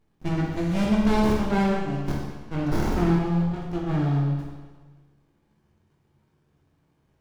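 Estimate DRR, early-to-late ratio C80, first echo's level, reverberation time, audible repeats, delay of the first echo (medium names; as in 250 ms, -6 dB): -3.5 dB, 2.5 dB, no echo, 1.4 s, no echo, no echo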